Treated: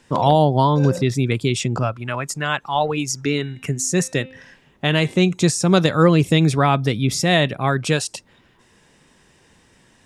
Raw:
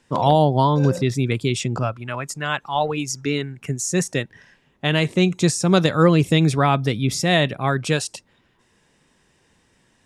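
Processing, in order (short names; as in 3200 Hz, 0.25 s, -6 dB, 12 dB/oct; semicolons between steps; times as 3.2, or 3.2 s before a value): 3.33–5.19 de-hum 260.6 Hz, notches 19; in parallel at +0.5 dB: compressor, threshold -33 dBFS, peak gain reduction 21 dB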